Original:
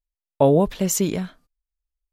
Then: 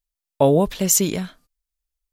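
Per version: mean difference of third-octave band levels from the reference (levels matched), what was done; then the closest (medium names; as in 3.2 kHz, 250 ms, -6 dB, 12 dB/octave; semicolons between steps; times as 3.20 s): 2.5 dB: treble shelf 2.9 kHz +8 dB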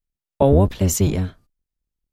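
4.5 dB: octave divider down 1 oct, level +4 dB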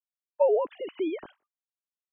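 14.0 dB: formants replaced by sine waves; trim -7.5 dB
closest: first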